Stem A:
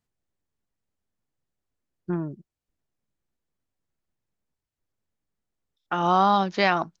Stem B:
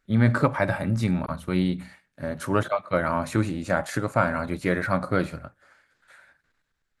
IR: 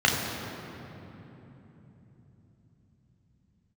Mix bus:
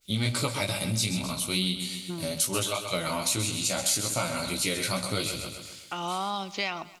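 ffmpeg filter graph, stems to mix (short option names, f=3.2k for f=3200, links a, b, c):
-filter_complex "[0:a]highshelf=f=2.7k:t=q:w=1.5:g=-12,volume=-8dB,asplit=2[a][b];[b]volume=-22.5dB[c];[1:a]flanger=delay=15.5:depth=4.1:speed=2.4,adynamicequalizer=threshold=0.00794:dfrequency=2100:dqfactor=0.7:tfrequency=2100:tqfactor=0.7:attack=5:release=100:ratio=0.375:range=1.5:mode=cutabove:tftype=highshelf,volume=2.5dB,asplit=2[d][e];[e]volume=-10dB[f];[c][f]amix=inputs=2:normalize=0,aecho=0:1:130|260|390|520|650|780:1|0.45|0.202|0.0911|0.041|0.0185[g];[a][d][g]amix=inputs=3:normalize=0,bandreject=f=1.7k:w=8.3,aexciter=amount=8.1:drive=9.4:freq=2.6k,acompressor=threshold=-31dB:ratio=2"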